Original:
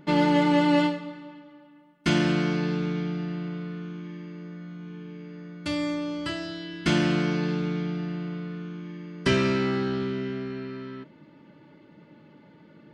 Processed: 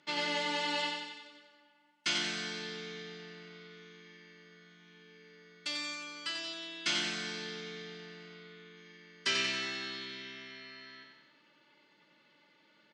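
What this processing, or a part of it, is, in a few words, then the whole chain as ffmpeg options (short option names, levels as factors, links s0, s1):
piezo pickup straight into a mixer: -filter_complex "[0:a]highpass=97,lowpass=6900,aderivative,asettb=1/sr,asplit=3[s0][s1][s2];[s0]atrim=end=8.344[s3];[s1]atrim=start=8.34:end=8.77,asetpts=PTS-STARTPTS,afade=t=in:d=0.004:c=qsin,afade=t=out:st=0.426:d=0.004:c=qsin,equalizer=f=5600:t=o:w=0.27:g=-13.5[s4];[s2]atrim=start=8.766[s5];[s3][s4]acrossfade=d=0.004:c1=hsin:c2=qsin[s6];[s6][s5]acrossfade=d=0.004:c1=qsin:c2=hsin,lowpass=7500,aecho=1:1:91|182|273|364|455|546|637|728:0.596|0.345|0.2|0.116|0.0674|0.0391|0.0227|0.0132,volume=2"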